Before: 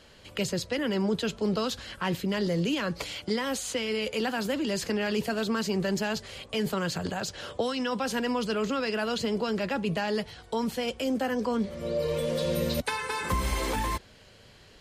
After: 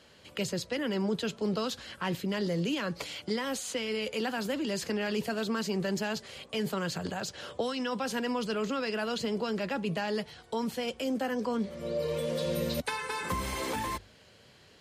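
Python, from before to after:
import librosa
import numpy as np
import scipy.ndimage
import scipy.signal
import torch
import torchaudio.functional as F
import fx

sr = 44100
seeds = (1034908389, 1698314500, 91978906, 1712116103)

y = scipy.signal.sosfilt(scipy.signal.butter(2, 79.0, 'highpass', fs=sr, output='sos'), x)
y = fx.hum_notches(y, sr, base_hz=50, count=2)
y = y * librosa.db_to_amplitude(-3.0)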